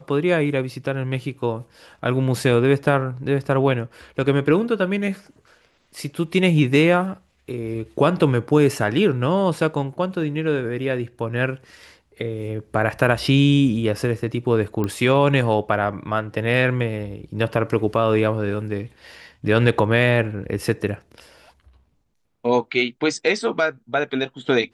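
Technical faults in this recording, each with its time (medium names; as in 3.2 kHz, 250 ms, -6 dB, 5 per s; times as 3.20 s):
14.84 s: pop -13 dBFS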